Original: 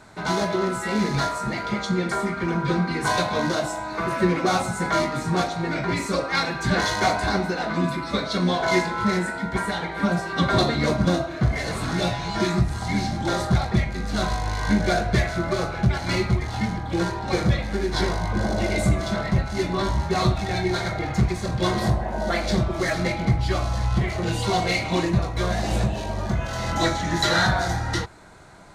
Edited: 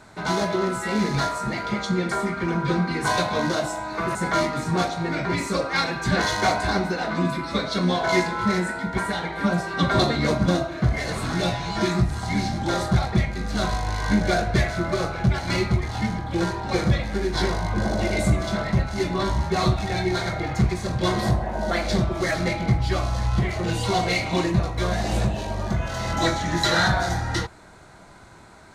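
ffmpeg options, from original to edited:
-filter_complex "[0:a]asplit=2[a][b];[a]atrim=end=4.152[c];[b]atrim=start=4.738[d];[c][d]acrossfade=d=0.004:c1=hsin:c2=hsin"

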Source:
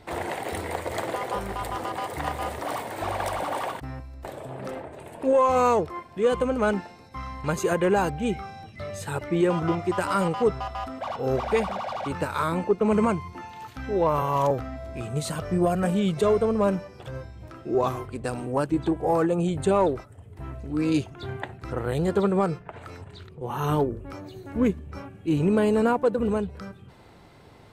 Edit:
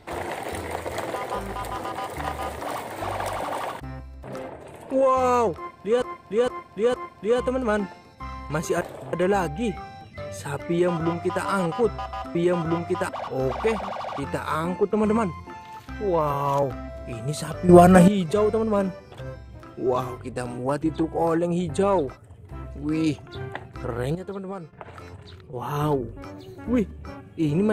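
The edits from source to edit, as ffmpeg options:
-filter_complex "[0:a]asplit=13[a][b][c][d][e][f][g][h][i][j][k][l][m];[a]atrim=end=4.242[n];[b]atrim=start=4.558:end=6.342[o];[c]atrim=start=5.878:end=6.342[p];[d]atrim=start=5.878:end=6.342[q];[e]atrim=start=5.878:end=7.752[r];[f]atrim=start=4.238:end=4.562[s];[g]atrim=start=7.748:end=10.972[t];[h]atrim=start=9.318:end=10.062[u];[i]atrim=start=10.968:end=15.572[v];[j]atrim=start=15.568:end=15.962,asetpts=PTS-STARTPTS,volume=11.5dB[w];[k]atrim=start=15.958:end=22.032[x];[l]atrim=start=22.028:end=22.612,asetpts=PTS-STARTPTS,volume=-11dB[y];[m]atrim=start=22.608[z];[n][o]acrossfade=d=0.004:c1=hsin:c2=hsin[aa];[aa][p]acrossfade=d=0.004:c1=hsin:c2=hsin[ab];[ab][q]acrossfade=d=0.004:c1=hsin:c2=hsin[ac];[ac][r]acrossfade=d=0.004:c1=hsin:c2=hsin[ad];[ad][s]acrossfade=d=0.004:c1=hsin:c2=hsin[ae];[ae][t]acrossfade=d=0.004:c1=hsin:c2=hsin[af];[af][u]acrossfade=d=0.004:c1=hsin:c2=hsin[ag];[ag][v]acrossfade=d=0.004:c1=hsin:c2=hsin[ah];[ah][w]acrossfade=d=0.004:c1=hsin:c2=hsin[ai];[ai][x]acrossfade=d=0.004:c1=hsin:c2=hsin[aj];[aj][y]acrossfade=d=0.004:c1=hsin:c2=hsin[ak];[ak][z]acrossfade=d=0.004:c1=hsin:c2=hsin"

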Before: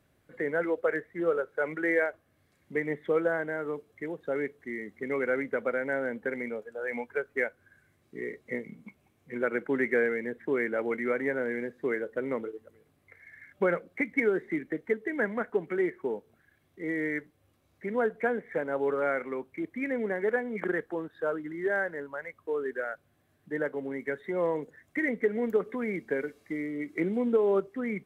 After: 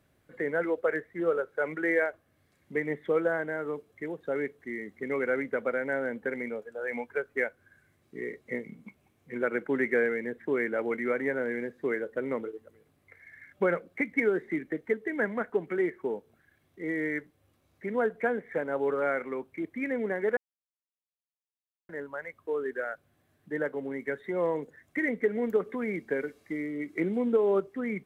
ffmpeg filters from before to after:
-filter_complex "[0:a]asplit=3[a][b][c];[a]atrim=end=20.37,asetpts=PTS-STARTPTS,afade=t=out:st=20.366:d=0.004:c=hsin[d];[b]atrim=start=20.37:end=21.89,asetpts=PTS-STARTPTS,volume=0[e];[c]atrim=start=21.89,asetpts=PTS-STARTPTS,afade=t=in:d=0.004:c=hsin[f];[d][e][f]concat=n=3:v=0:a=1"

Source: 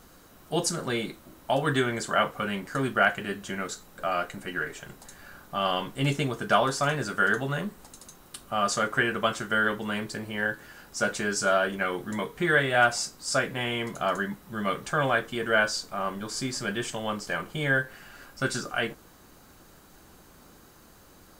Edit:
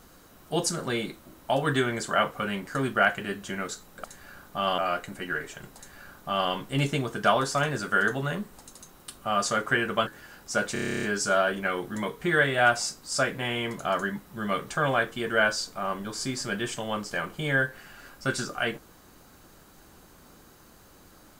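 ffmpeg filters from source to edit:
-filter_complex "[0:a]asplit=14[a][b][c][d][e][f][g][h][i][j][k][l][m][n];[a]atrim=end=4.042[o];[b]atrim=start=5.018:end=5.762[p];[c]atrim=start=4.038:end=9.332[q];[d]atrim=start=10.528:end=11.222[r];[e]atrim=start=11.188:end=11.222[s];[f]atrim=start=11.188:end=11.222[t];[g]atrim=start=11.188:end=11.222[u];[h]atrim=start=11.188:end=11.222[v];[i]atrim=start=11.188:end=11.222[w];[j]atrim=start=11.188:end=11.222[x];[k]atrim=start=11.188:end=11.222[y];[l]atrim=start=11.188:end=11.222[z];[m]atrim=start=11.188:end=11.222[aa];[n]atrim=start=11.188[ab];[o][p]acrossfade=d=0.004:c1=hsin:c2=hsin[ac];[ac][q]acrossfade=d=0.004:c1=hsin:c2=hsin[ad];[ad][r]acrossfade=d=0.004:c1=hsin:c2=hsin[ae];[ae][s]acrossfade=d=0.004:c1=hsin:c2=hsin[af];[af][t]acrossfade=d=0.004:c1=hsin:c2=hsin[ag];[ag][u]acrossfade=d=0.004:c1=hsin:c2=hsin[ah];[ah][v]acrossfade=d=0.004:c1=hsin:c2=hsin[ai];[ai][w]acrossfade=d=0.004:c1=hsin:c2=hsin[aj];[aj][x]acrossfade=d=0.004:c1=hsin:c2=hsin[ak];[ak][y]acrossfade=d=0.004:c1=hsin:c2=hsin[al];[al][z]acrossfade=d=0.004:c1=hsin:c2=hsin[am];[am][aa]acrossfade=d=0.004:c1=hsin:c2=hsin[an];[an][ab]acrossfade=d=0.004:c1=hsin:c2=hsin"

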